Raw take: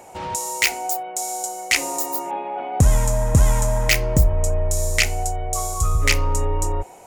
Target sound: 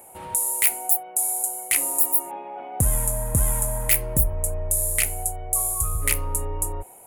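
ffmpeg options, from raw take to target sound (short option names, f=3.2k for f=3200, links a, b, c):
-af "highshelf=f=7.9k:t=q:w=3:g=13,volume=-7.5dB"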